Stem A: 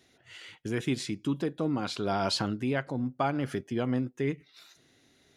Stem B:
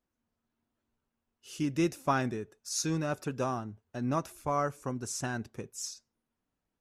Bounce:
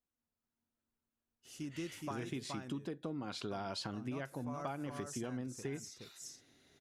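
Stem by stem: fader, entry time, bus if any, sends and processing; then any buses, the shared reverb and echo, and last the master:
−3.5 dB, 1.45 s, no send, no echo send, no processing
−10.5 dB, 0.00 s, muted 0:02.46–0:03.51, no send, echo send −3.5 dB, high-shelf EQ 5,500 Hz +5 dB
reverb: not used
echo: single-tap delay 421 ms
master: downward compressor, threshold −38 dBFS, peak gain reduction 11 dB

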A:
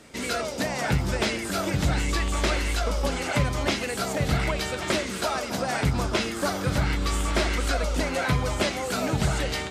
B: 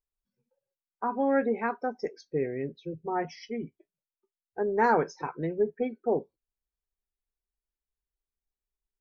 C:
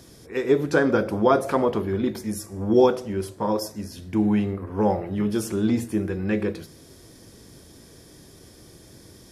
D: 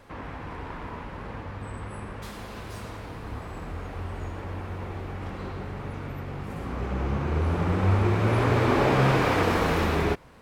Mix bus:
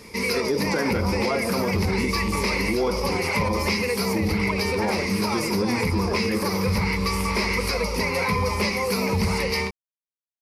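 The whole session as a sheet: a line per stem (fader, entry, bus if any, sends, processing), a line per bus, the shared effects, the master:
+2.0 dB, 0.00 s, no send, EQ curve with evenly spaced ripples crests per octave 0.86, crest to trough 17 dB; soft clipping −12.5 dBFS, distortion −22 dB
−2.5 dB, 0.00 s, no send, no processing
−0.5 dB, 0.00 s, no send, no processing
muted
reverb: not used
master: brickwall limiter −15 dBFS, peak gain reduction 11 dB

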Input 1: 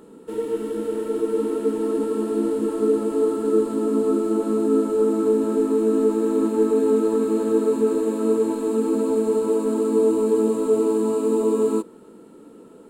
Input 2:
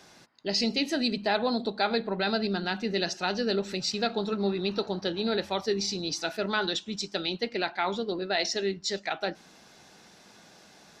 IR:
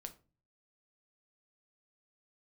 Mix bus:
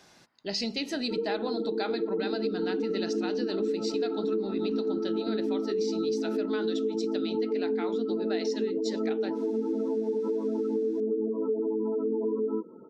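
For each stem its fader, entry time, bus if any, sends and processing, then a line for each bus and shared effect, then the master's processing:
−2.0 dB, 0.80 s, no send, gate on every frequency bin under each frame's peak −20 dB strong
−3.0 dB, 0.00 s, no send, no processing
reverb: not used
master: downward compressor, threshold −26 dBFS, peak gain reduction 10 dB

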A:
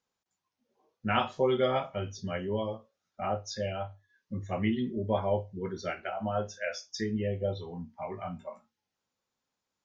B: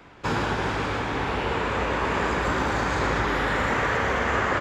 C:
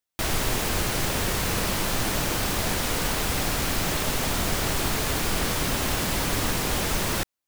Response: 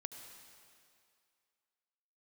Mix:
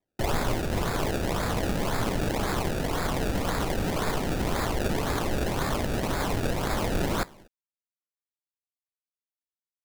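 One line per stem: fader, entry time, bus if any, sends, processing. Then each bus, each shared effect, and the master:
muted
−13.5 dB, 2.00 s, no send, no processing
−1.0 dB, 0.00 s, send −13 dB, no processing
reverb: on, RT60 2.3 s, pre-delay 67 ms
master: speech leveller; tuned comb filter 59 Hz, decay 0.31 s, mix 30%; sample-and-hold swept by an LFO 29×, swing 100% 1.9 Hz

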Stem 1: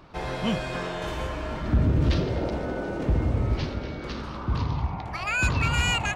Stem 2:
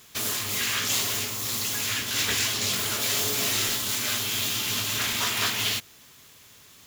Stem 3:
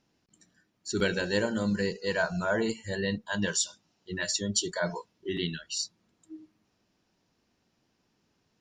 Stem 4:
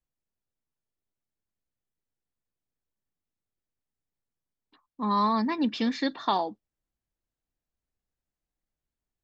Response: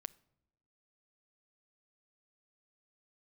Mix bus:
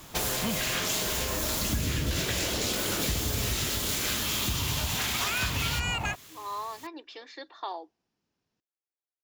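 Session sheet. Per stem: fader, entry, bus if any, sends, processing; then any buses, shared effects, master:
0.0 dB, 0.00 s, no send, no processing
+1.5 dB, 0.00 s, no send, no processing
−9.5 dB, 0.00 s, no send, no processing
−10.5 dB, 1.35 s, send −17.5 dB, elliptic high-pass filter 330 Hz, stop band 40 dB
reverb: on, pre-delay 7 ms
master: downward compressor, threshold −26 dBFS, peak gain reduction 10 dB

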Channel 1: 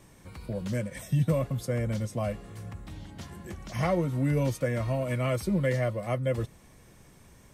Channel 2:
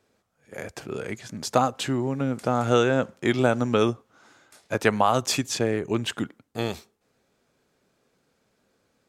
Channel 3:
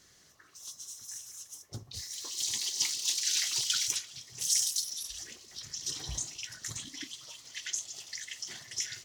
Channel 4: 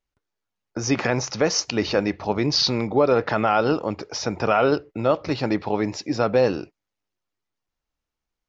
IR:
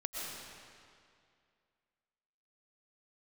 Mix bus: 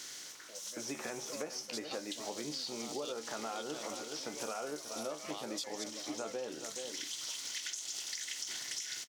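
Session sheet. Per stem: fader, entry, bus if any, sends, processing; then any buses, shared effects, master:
−11.5 dB, 0.00 s, no send, no echo send, Bessel high-pass filter 660 Hz, order 2
−19.5 dB, 0.30 s, no send, no echo send, high shelf with overshoot 2,600 Hz +10.5 dB, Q 3; gate pattern "x...xx.x." 149 BPM
−1.0 dB, 0.00 s, no send, echo send −17.5 dB, compressor on every frequency bin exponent 0.6; downward compressor, threshold −30 dBFS, peak gain reduction 8.5 dB; automatic ducking −8 dB, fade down 0.60 s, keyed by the fourth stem
−8.5 dB, 0.00 s, no send, echo send −12.5 dB, low-shelf EQ 380 Hz +5.5 dB; tuned comb filter 75 Hz, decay 0.22 s, harmonics all, mix 80%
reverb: not used
echo: single-tap delay 423 ms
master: high-pass filter 310 Hz 12 dB per octave; downward compressor, threshold −37 dBFS, peak gain reduction 10.5 dB

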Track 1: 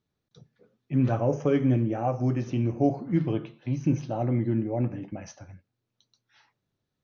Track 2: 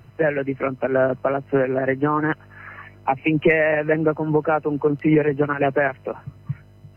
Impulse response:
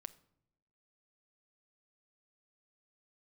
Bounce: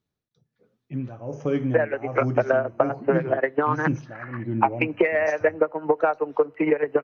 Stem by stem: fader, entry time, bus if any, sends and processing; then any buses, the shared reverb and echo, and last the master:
−0.5 dB, 0.00 s, no send, amplitude tremolo 1.3 Hz, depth 80%
−3.0 dB, 1.55 s, send −7 dB, three-way crossover with the lows and the highs turned down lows −20 dB, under 390 Hz, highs −14 dB, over 2,400 Hz; transient designer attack +10 dB, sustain −4 dB; downward compressor 4 to 1, threshold −15 dBFS, peak gain reduction 8 dB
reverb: on, pre-delay 6 ms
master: no processing

